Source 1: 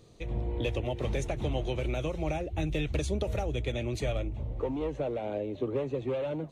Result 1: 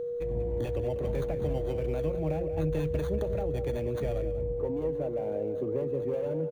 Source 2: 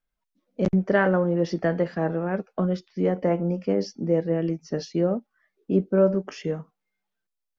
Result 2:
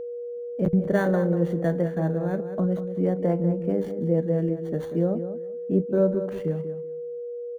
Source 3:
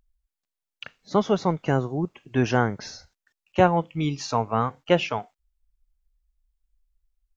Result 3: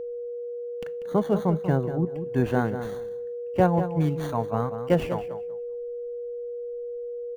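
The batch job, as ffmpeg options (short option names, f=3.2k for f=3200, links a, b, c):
-filter_complex "[0:a]equalizer=f=160:t=o:w=0.33:g=6,equalizer=f=1.25k:t=o:w=0.33:g=-7,equalizer=f=5k:t=o:w=0.33:g=-5,asplit=2[a][b];[b]adelay=191,lowpass=f=3.3k:p=1,volume=-10dB,asplit=2[c][d];[d]adelay=191,lowpass=f=3.3k:p=1,volume=0.2,asplit=2[e][f];[f]adelay=191,lowpass=f=3.3k:p=1,volume=0.2[g];[a][c][e][g]amix=inputs=4:normalize=0,acrossover=split=2200[h][i];[i]acrusher=samples=17:mix=1:aa=0.000001[j];[h][j]amix=inputs=2:normalize=0,equalizer=f=890:t=o:w=0.45:g=-3,aeval=exprs='val(0)+0.0355*sin(2*PI*480*n/s)':c=same,volume=-2dB"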